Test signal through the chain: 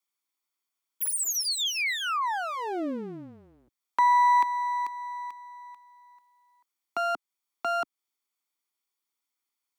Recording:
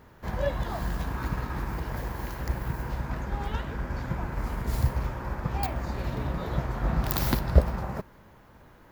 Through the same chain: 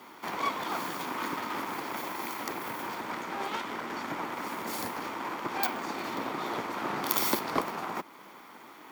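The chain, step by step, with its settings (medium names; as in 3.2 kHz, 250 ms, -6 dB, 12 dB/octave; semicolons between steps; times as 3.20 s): comb filter that takes the minimum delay 0.89 ms; in parallel at 0 dB: compression, threshold -43 dBFS; on the sum: Chebyshev high-pass 300 Hz, order 3; frequency shift -16 Hz; trim +3.5 dB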